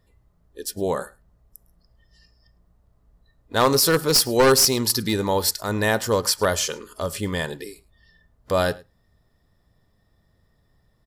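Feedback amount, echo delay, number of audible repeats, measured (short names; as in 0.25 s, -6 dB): no steady repeat, 0.106 s, 1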